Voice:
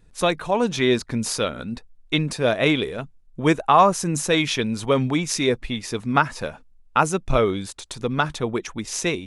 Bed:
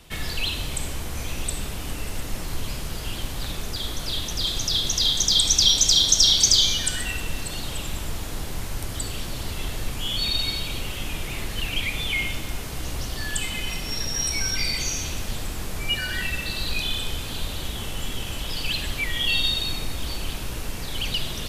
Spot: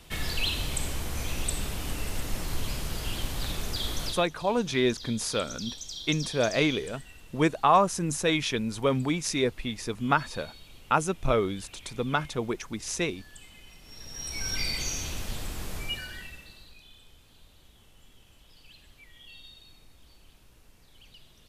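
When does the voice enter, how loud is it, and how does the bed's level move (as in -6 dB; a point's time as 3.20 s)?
3.95 s, -5.5 dB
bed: 4.07 s -2 dB
4.27 s -22 dB
13.79 s -22 dB
14.54 s -5 dB
15.76 s -5 dB
16.78 s -27 dB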